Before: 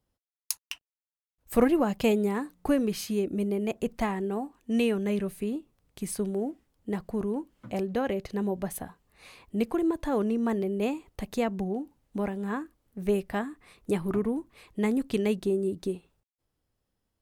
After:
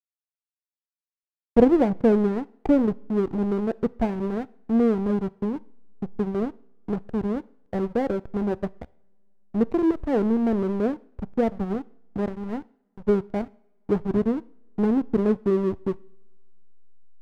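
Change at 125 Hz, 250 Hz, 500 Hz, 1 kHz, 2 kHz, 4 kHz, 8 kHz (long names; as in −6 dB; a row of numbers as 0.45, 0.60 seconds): +4.5 dB, +5.0 dB, +4.5 dB, +2.5 dB, −2.5 dB, can't be measured, below −15 dB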